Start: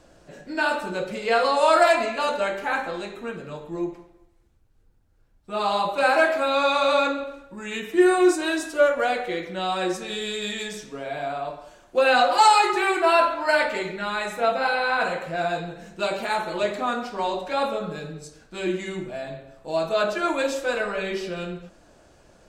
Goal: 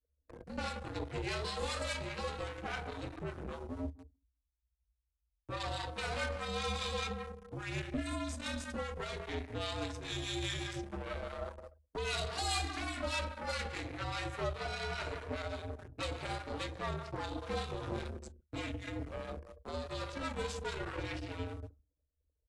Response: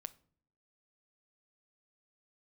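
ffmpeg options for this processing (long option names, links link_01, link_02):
-filter_complex "[0:a]asettb=1/sr,asplit=3[link_01][link_02][link_03];[link_01]atrim=end=17.434[link_04];[link_02]atrim=start=17.43:end=18.08,asetpts=PTS-STARTPTS,afade=type=in:duration=0.004:curve=qsin,afade=type=out:start_time=0.646:duration=0.004:curve=qsin,aeval=exprs='val(0)+0.5*0.0178*sgn(val(0))':channel_layout=same[link_05];[link_03]atrim=start=18.076[link_06];[link_04][link_05]acrossfade=duration=0.004:curve1=hsin:curve2=qsin[link_07];[link_07][link_06]acrossfade=duration=0.004:curve1=qsin:curve2=hsin,highshelf=frequency=2800:gain=-9,acrossover=split=130|3000[link_08][link_09][link_10];[link_09]acompressor=threshold=-35dB:ratio=10[link_11];[link_08][link_11][link_10]amix=inputs=3:normalize=0,asplit=2[link_12][link_13];[link_13]adelay=177,lowpass=frequency=2400:poles=1,volume=-13dB,asplit=2[link_14][link_15];[link_15]adelay=177,lowpass=frequency=2400:poles=1,volume=0.36,asplit=2[link_16][link_17];[link_17]adelay=177,lowpass=frequency=2400:poles=1,volume=0.36,asplit=2[link_18][link_19];[link_19]adelay=177,lowpass=frequency=2400:poles=1,volume=0.36[link_20];[link_12][link_14][link_16][link_18][link_20]amix=inputs=5:normalize=0,flanger=delay=7.1:depth=2.2:regen=65:speed=1.2:shape=sinusoidal,aeval=exprs='0.0562*(cos(1*acos(clip(val(0)/0.0562,-1,1)))-cos(1*PI/2))+0.0112*(cos(6*acos(clip(val(0)/0.0562,-1,1)))-cos(6*PI/2))+0.001*(cos(7*acos(clip(val(0)/0.0562,-1,1)))-cos(7*PI/2))+0.000355*(cos(8*acos(clip(val(0)/0.0562,-1,1)))-cos(8*PI/2))':channel_layout=same,anlmdn=0.0158,agate=range=-13dB:threshold=-57dB:ratio=16:detection=peak,asplit=2[link_21][link_22];[link_22]aeval=exprs='val(0)*gte(abs(val(0)),0.00668)':channel_layout=same,volume=-8dB[link_23];[link_21][link_23]amix=inputs=2:normalize=0,afreqshift=-77,acrossover=split=890[link_24][link_25];[link_24]aeval=exprs='val(0)*(1-0.5/2+0.5/2*cos(2*PI*4.9*n/s))':channel_layout=same[link_26];[link_25]aeval=exprs='val(0)*(1-0.5/2-0.5/2*cos(2*PI*4.9*n/s))':channel_layout=same[link_27];[link_26][link_27]amix=inputs=2:normalize=0" -ar 24000 -c:a aac -b:a 64k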